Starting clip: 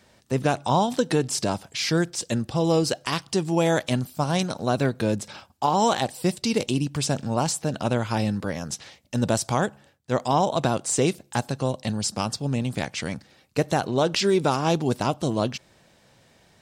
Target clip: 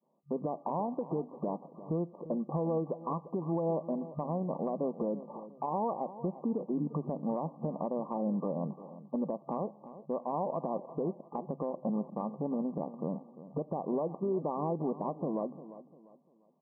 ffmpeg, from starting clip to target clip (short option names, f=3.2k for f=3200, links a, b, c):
-af "agate=range=-33dB:threshold=-47dB:ratio=3:detection=peak,afftfilt=real='re*between(b*sr/4096,150,1200)':imag='im*between(b*sr/4096,150,1200)':win_size=4096:overlap=0.75,adynamicequalizer=threshold=0.0141:dfrequency=540:dqfactor=3.6:tfrequency=540:tqfactor=3.6:attack=5:release=100:ratio=0.375:range=2:mode=boostabove:tftype=bell,acompressor=threshold=-27dB:ratio=4,alimiter=limit=-24dB:level=0:latency=1:release=185,aecho=1:1:348|696|1044:0.178|0.0587|0.0194"